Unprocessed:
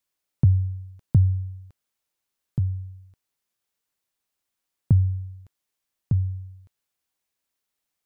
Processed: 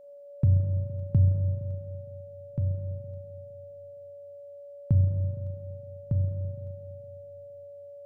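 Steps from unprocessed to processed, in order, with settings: whine 570 Hz -43 dBFS; spring tank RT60 2.4 s, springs 33/42 ms, chirp 30 ms, DRR 4 dB; gain -5.5 dB

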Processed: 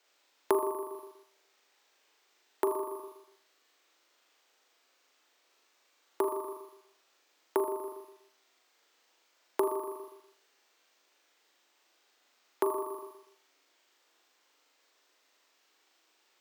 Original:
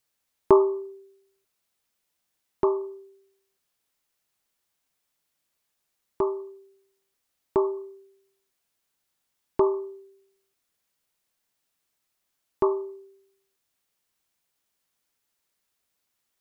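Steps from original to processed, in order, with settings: careless resampling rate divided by 4×, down none, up hold; steep high-pass 290 Hz 36 dB/oct; on a send: flutter echo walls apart 6.9 m, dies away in 0.76 s; on the sum: compressor 3:1, threshold -36 dBFS, peak gain reduction 17.5 dB; gain +5 dB

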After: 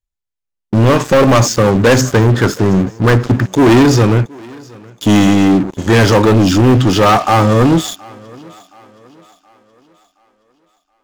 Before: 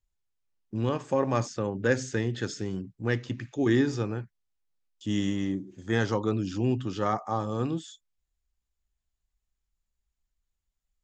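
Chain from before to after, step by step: 2.01–3.46 resonant high shelf 1800 Hz -10 dB, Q 3; sample leveller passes 5; thinning echo 0.722 s, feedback 46%, high-pass 180 Hz, level -23.5 dB; gain +7 dB

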